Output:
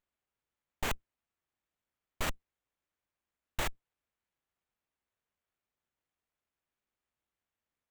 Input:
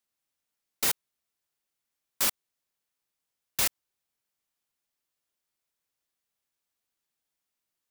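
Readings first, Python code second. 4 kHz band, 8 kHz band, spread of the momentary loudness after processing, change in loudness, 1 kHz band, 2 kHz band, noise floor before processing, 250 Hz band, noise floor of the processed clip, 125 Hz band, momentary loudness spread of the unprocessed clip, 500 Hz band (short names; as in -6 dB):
-9.0 dB, -14.5 dB, 7 LU, -10.5 dB, 0.0 dB, -3.0 dB, under -85 dBFS, 0.0 dB, under -85 dBFS, +6.0 dB, 6 LU, 0.0 dB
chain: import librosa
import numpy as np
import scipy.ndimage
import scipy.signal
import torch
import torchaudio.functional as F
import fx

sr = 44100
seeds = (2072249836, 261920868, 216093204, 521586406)

y = fx.octave_divider(x, sr, octaves=2, level_db=3.0)
y = fx.running_max(y, sr, window=9)
y = F.gain(torch.from_numpy(y), -4.5).numpy()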